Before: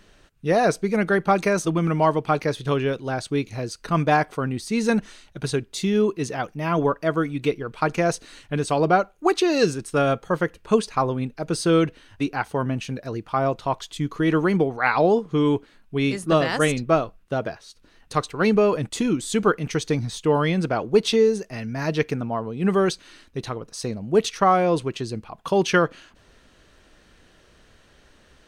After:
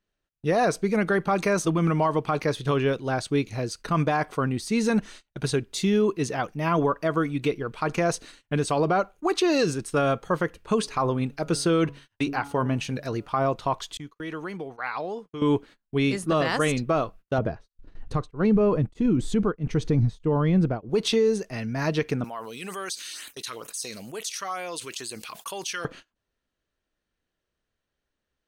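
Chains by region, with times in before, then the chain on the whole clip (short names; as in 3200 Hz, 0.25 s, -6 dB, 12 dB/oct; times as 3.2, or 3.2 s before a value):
10.79–13.26 de-hum 140.8 Hz, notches 10 + expander -45 dBFS + mismatched tape noise reduction encoder only
13.97–15.42 expander -29 dBFS + compressor 2:1, threshold -33 dBFS + low shelf 470 Hz -8.5 dB
17.38–20.9 tilt -3.5 dB/oct + beating tremolo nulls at 1.6 Hz
22.24–25.85 differentiator + LFO notch sine 2.2 Hz 720–5800 Hz + fast leveller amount 70%
whole clip: gate -42 dBFS, range -28 dB; dynamic EQ 1100 Hz, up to +4 dB, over -38 dBFS, Q 4.9; limiter -14 dBFS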